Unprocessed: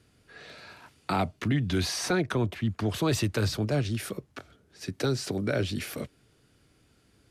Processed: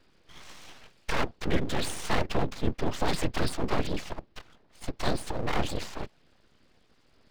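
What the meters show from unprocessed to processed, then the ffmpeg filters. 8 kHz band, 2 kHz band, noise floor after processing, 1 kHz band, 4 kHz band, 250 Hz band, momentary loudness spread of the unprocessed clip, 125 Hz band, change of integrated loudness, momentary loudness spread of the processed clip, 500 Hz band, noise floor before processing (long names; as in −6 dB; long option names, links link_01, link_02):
−4.0 dB, −0.5 dB, −64 dBFS, +2.0 dB, −1.5 dB, −4.0 dB, 19 LU, −6.0 dB, −2.5 dB, 19 LU, −2.0 dB, −65 dBFS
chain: -af "aresample=11025,aresample=44100,afftfilt=real='hypot(re,im)*cos(2*PI*random(0))':imag='hypot(re,im)*sin(2*PI*random(1))':win_size=512:overlap=0.75,aeval=exprs='abs(val(0))':channel_layout=same,volume=8dB"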